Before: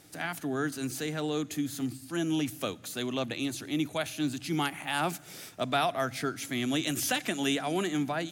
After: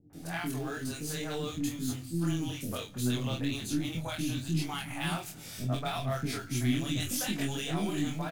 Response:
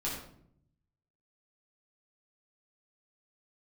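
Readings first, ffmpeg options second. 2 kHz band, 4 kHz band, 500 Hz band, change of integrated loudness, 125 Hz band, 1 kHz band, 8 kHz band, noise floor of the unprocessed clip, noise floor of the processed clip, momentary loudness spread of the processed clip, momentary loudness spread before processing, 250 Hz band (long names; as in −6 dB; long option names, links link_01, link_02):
−4.5 dB, −2.5 dB, −5.5 dB, −2.0 dB, +5.5 dB, −6.0 dB, −1.0 dB, −50 dBFS, −46 dBFS, 5 LU, 6 LU, −1.5 dB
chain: -filter_complex "[0:a]lowshelf=frequency=71:gain=6.5,asplit=2[link_01][link_02];[link_02]acrusher=bits=2:mode=log:mix=0:aa=0.000001,volume=-8dB[link_03];[link_01][link_03]amix=inputs=2:normalize=0,acompressor=threshold=-27dB:ratio=6,flanger=delay=19.5:depth=5.4:speed=1.1,aeval=exprs='0.1*(cos(1*acos(clip(val(0)/0.1,-1,1)))-cos(1*PI/2))+0.00398*(cos(4*acos(clip(val(0)/0.1,-1,1)))-cos(4*PI/2))+0.00447*(cos(6*acos(clip(val(0)/0.1,-1,1)))-cos(6*PI/2))':channel_layout=same,asubboost=boost=2.5:cutoff=240,asplit=2[link_04][link_05];[link_05]adelay=24,volume=-5dB[link_06];[link_04][link_06]amix=inputs=2:normalize=0,acrossover=split=390|1600[link_07][link_08][link_09];[link_08]adelay=100[link_10];[link_09]adelay=130[link_11];[link_07][link_10][link_11]amix=inputs=3:normalize=0"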